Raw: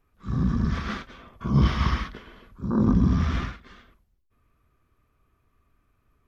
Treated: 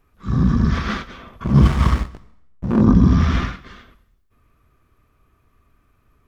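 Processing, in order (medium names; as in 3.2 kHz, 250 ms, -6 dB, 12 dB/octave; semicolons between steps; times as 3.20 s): 1.44–2.82 s: hysteresis with a dead band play -26 dBFS; plate-style reverb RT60 0.77 s, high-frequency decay 0.95×, pre-delay 75 ms, DRR 19.5 dB; trim +7.5 dB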